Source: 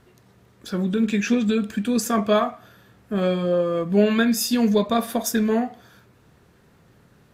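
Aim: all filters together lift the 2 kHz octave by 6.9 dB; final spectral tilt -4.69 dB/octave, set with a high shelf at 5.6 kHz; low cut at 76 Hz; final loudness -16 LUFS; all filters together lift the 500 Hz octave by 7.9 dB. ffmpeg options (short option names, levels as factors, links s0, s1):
-af "highpass=76,equalizer=f=500:t=o:g=9,equalizer=f=2000:t=o:g=8,highshelf=f=5600:g=5,volume=1.12"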